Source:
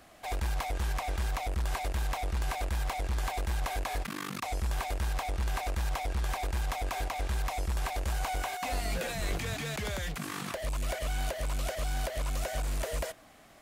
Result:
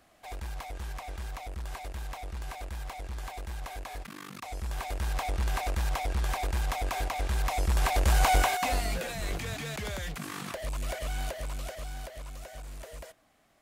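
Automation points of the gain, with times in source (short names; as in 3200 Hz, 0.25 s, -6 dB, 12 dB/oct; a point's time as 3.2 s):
4.34 s -6.5 dB
5.25 s +2 dB
7.3 s +2 dB
8.35 s +10.5 dB
9.04 s -1 dB
11.21 s -1 dB
12.38 s -10.5 dB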